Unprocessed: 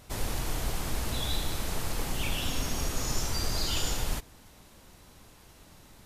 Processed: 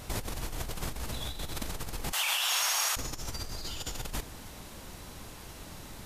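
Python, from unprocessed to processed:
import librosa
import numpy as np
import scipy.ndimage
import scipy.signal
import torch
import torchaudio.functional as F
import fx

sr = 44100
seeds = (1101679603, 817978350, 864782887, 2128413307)

y = fx.highpass(x, sr, hz=830.0, slope=24, at=(2.12, 2.97))
y = fx.over_compress(y, sr, threshold_db=-37.0, ratio=-1.0)
y = y * librosa.db_to_amplitude(2.5)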